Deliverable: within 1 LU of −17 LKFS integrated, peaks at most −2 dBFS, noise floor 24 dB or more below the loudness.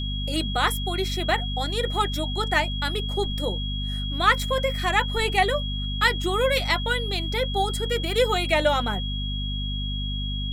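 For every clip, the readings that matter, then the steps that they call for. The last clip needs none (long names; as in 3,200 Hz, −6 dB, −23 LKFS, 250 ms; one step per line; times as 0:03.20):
mains hum 50 Hz; hum harmonics up to 250 Hz; level of the hum −27 dBFS; interfering tone 3,300 Hz; level of the tone −32 dBFS; integrated loudness −24.5 LKFS; sample peak −5.0 dBFS; target loudness −17.0 LKFS
→ mains-hum notches 50/100/150/200/250 Hz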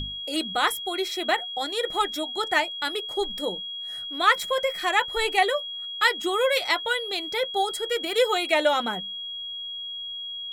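mains hum none found; interfering tone 3,300 Hz; level of the tone −32 dBFS
→ notch filter 3,300 Hz, Q 30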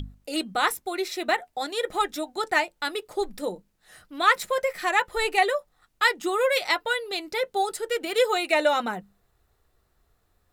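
interfering tone none found; integrated loudness −25.5 LKFS; sample peak −5.5 dBFS; target loudness −17.0 LKFS
→ level +8.5 dB
brickwall limiter −2 dBFS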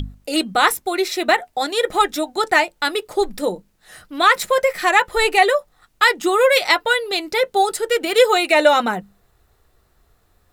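integrated loudness −17.5 LKFS; sample peak −2.0 dBFS; background noise floor −62 dBFS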